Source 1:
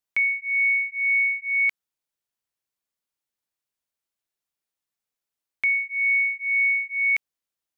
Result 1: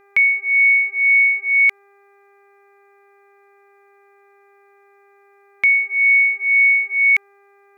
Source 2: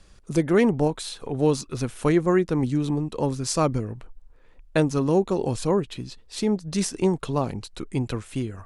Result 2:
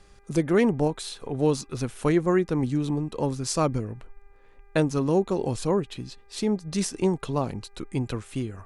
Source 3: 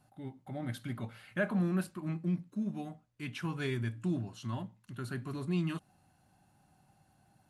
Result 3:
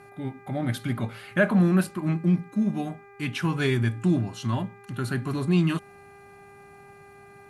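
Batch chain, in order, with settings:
buzz 400 Hz, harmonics 6, -61 dBFS -4 dB/oct; normalise peaks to -9 dBFS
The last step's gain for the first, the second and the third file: +7.5, -2.0, +10.5 dB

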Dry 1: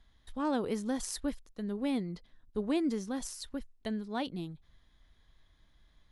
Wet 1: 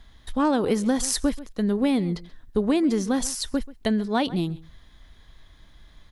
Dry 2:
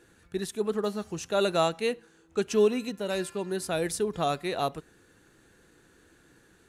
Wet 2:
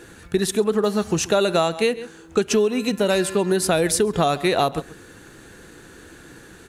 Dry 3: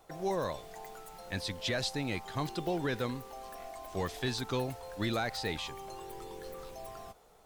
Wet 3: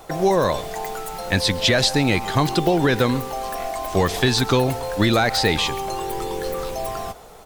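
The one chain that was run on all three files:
outdoor echo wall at 23 m, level -20 dB; compressor 10:1, threshold -31 dBFS; normalise peaks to -6 dBFS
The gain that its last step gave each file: +13.5, +15.5, +18.0 dB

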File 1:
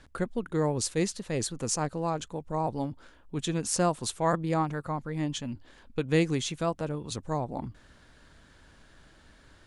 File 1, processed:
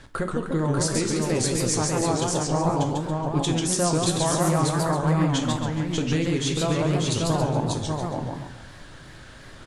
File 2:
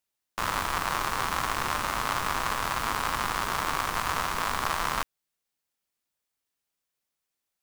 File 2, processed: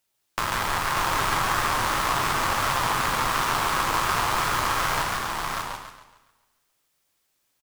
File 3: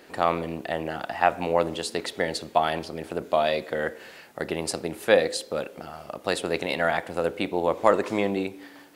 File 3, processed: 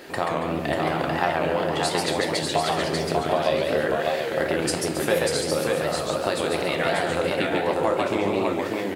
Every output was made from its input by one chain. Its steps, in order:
compressor 4:1, threshold -32 dBFS; on a send: echo 0.591 s -3.5 dB; on the sum: two-slope reverb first 0.42 s, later 1.7 s, from -21 dB, DRR 5.5 dB; warbling echo 0.139 s, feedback 40%, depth 219 cents, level -3 dB; match loudness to -24 LUFS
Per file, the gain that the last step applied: +8.0, +7.5, +7.5 dB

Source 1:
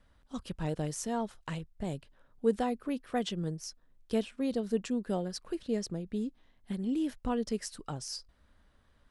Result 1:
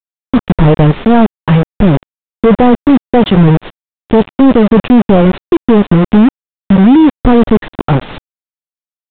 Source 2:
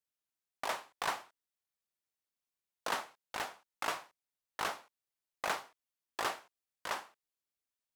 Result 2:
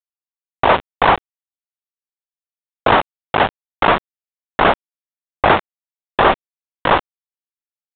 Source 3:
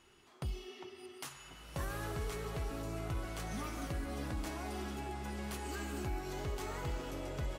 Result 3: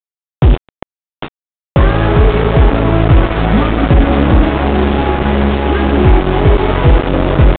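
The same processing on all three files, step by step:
companded quantiser 2-bit; tilt shelf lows +6 dB, about 1100 Hz; downsampling 8000 Hz; normalise peaks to -1.5 dBFS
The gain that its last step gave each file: +16.5, +17.5, +16.5 dB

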